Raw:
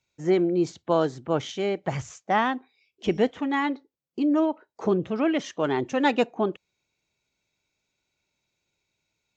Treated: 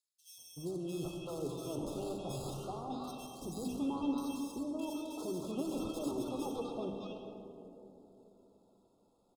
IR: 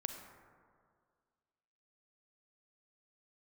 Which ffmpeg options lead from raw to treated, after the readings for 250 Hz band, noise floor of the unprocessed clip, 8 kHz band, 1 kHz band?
−11.5 dB, −83 dBFS, can't be measured, −16.5 dB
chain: -filter_complex "[0:a]bandreject=frequency=50:width_type=h:width=6,bandreject=frequency=100:width_type=h:width=6,bandreject=frequency=150:width_type=h:width=6,bandreject=frequency=200:width_type=h:width=6,bandreject=frequency=250:width_type=h:width=6,bandreject=frequency=300:width_type=h:width=6,areverse,acompressor=threshold=-34dB:ratio=10,areverse,alimiter=level_in=11.5dB:limit=-24dB:level=0:latency=1,volume=-11.5dB,acrusher=samples=15:mix=1:aa=0.000001,aphaser=in_gain=1:out_gain=1:delay=4.1:decay=0.4:speed=0.28:type=triangular,asuperstop=centerf=1900:order=20:qfactor=1.5,acrossover=split=1100|4000[link_01][link_02][link_03];[link_01]adelay=380[link_04];[link_02]adelay=610[link_05];[link_04][link_05][link_03]amix=inputs=3:normalize=0[link_06];[1:a]atrim=start_sample=2205,asetrate=22491,aresample=44100[link_07];[link_06][link_07]afir=irnorm=-1:irlink=0,volume=2dB"

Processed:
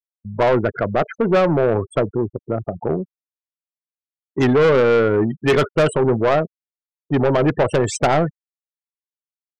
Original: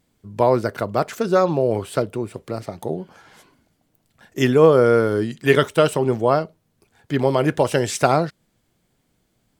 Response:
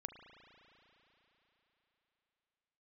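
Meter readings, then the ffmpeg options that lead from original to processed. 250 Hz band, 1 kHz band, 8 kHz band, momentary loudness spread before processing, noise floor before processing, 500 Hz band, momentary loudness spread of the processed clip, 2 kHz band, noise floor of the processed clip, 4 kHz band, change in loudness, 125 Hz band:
+2.0 dB, +0.5 dB, can't be measured, 15 LU, −68 dBFS, +1.0 dB, 11 LU, +2.0 dB, below −85 dBFS, −0.5 dB, +1.0 dB, +2.0 dB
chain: -filter_complex "[0:a]afftfilt=real='re*gte(hypot(re,im),0.0562)':imag='im*gte(hypot(re,im),0.0562)':win_size=1024:overlap=0.75,agate=range=-33dB:threshold=-42dB:ratio=3:detection=peak,equalizer=frequency=8400:width=0.48:gain=-9.5,acrossover=split=4500[link_01][link_02];[link_02]crystalizer=i=1:c=0[link_03];[link_01][link_03]amix=inputs=2:normalize=0,asoftclip=type=tanh:threshold=-18dB,volume=7dB"

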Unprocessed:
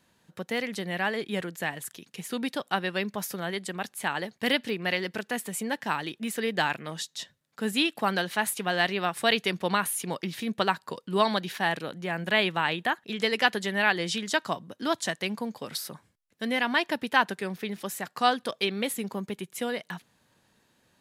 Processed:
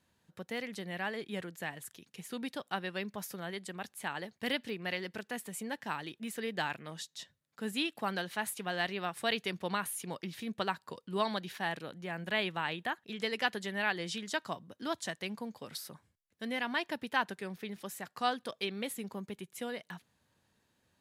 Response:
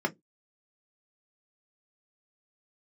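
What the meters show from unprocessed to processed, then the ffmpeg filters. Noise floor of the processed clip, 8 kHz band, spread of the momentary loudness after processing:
−77 dBFS, −8.5 dB, 10 LU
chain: -af "equalizer=frequency=77:width=1.5:gain=7.5,volume=-8.5dB"

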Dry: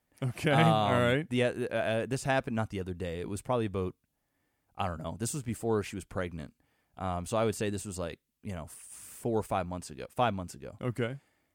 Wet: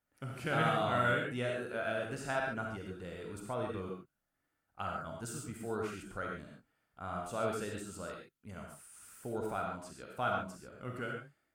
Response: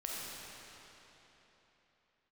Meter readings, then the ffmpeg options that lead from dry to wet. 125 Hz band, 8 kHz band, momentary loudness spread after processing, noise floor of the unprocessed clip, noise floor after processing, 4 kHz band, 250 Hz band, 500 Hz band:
−9.0 dB, −7.0 dB, 17 LU, −79 dBFS, −84 dBFS, −7.0 dB, −8.0 dB, −6.0 dB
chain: -filter_complex "[0:a]equalizer=frequency=1400:width=5.4:gain=13[link_01];[1:a]atrim=start_sample=2205,atrim=end_sample=6615[link_02];[link_01][link_02]afir=irnorm=-1:irlink=0,volume=-6.5dB"

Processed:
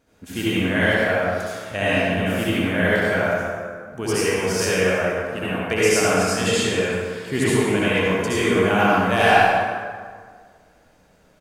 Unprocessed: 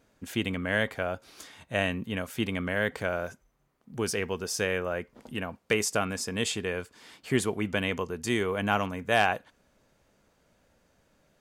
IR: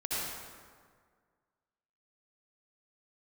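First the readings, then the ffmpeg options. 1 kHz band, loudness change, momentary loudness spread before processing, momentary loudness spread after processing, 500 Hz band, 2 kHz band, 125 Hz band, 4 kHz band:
+11.5 dB, +10.0 dB, 10 LU, 10 LU, +11.0 dB, +10.0 dB, +9.5 dB, +8.5 dB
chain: -filter_complex "[0:a]asplit=2[link_01][link_02];[link_02]adelay=120,highpass=300,lowpass=3400,asoftclip=type=hard:threshold=-19dB,volume=-8dB[link_03];[link_01][link_03]amix=inputs=2:normalize=0[link_04];[1:a]atrim=start_sample=2205[link_05];[link_04][link_05]afir=irnorm=-1:irlink=0,volume=3.5dB"

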